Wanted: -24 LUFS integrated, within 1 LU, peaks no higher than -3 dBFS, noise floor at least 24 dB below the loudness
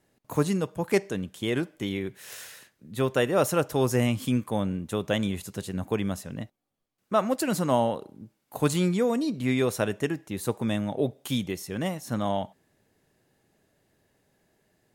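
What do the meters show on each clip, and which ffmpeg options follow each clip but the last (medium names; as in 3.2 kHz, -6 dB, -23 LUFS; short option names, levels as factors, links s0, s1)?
loudness -28.0 LUFS; peak level -9.0 dBFS; loudness target -24.0 LUFS
-> -af "volume=1.58"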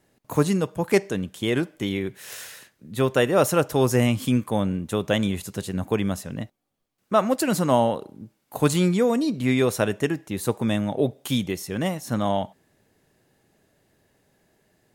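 loudness -24.0 LUFS; peak level -5.0 dBFS; noise floor -72 dBFS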